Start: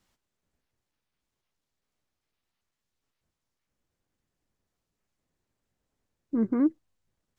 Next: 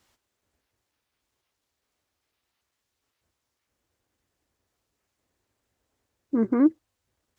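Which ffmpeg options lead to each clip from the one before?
-af "highpass=53,equalizer=f=170:w=1.8:g=-9.5,volume=2.11"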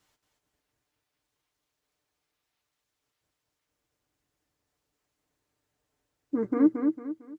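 -af "aecho=1:1:6.7:0.46,aecho=1:1:226|452|678|904:0.562|0.191|0.065|0.0221,volume=0.596"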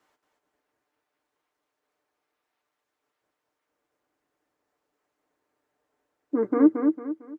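-filter_complex "[0:a]acrossover=split=250 2000:gain=0.126 1 0.251[s0][s1][s2];[s0][s1][s2]amix=inputs=3:normalize=0,volume=2.11"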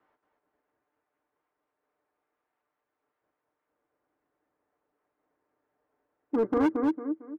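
-filter_complex "[0:a]lowpass=1800,acrossover=split=550[s0][s1];[s0]asoftclip=type=hard:threshold=0.0708[s2];[s2][s1]amix=inputs=2:normalize=0"

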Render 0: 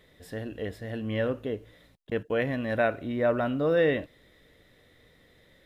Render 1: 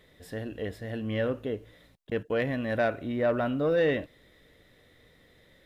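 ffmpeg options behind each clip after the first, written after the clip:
-af "asoftclip=type=tanh:threshold=0.158"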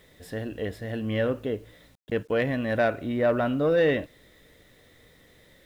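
-af "acrusher=bits=10:mix=0:aa=0.000001,volume=1.41"

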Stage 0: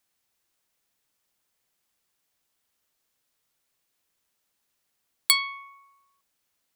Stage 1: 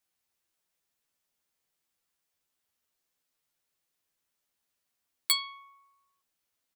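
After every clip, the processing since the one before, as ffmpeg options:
-filter_complex "[0:a]asplit=2[s0][s1];[s1]adelay=12,volume=0.708[s2];[s0][s2]amix=inputs=2:normalize=0,volume=0.422"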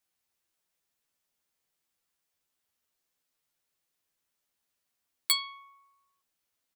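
-af anull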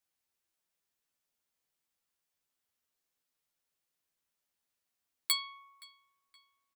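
-filter_complex "[0:a]asplit=2[s0][s1];[s1]adelay=521,lowpass=f=4500:p=1,volume=0.0891,asplit=2[s2][s3];[s3]adelay=521,lowpass=f=4500:p=1,volume=0.44,asplit=2[s4][s5];[s5]adelay=521,lowpass=f=4500:p=1,volume=0.44[s6];[s0][s2][s4][s6]amix=inputs=4:normalize=0,volume=0.631"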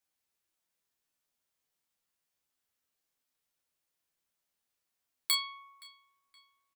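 -filter_complex "[0:a]asplit=2[s0][s1];[s1]adelay=28,volume=0.422[s2];[s0][s2]amix=inputs=2:normalize=0"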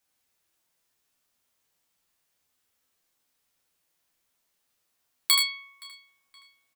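-af "aecho=1:1:78:0.631,volume=2.37"

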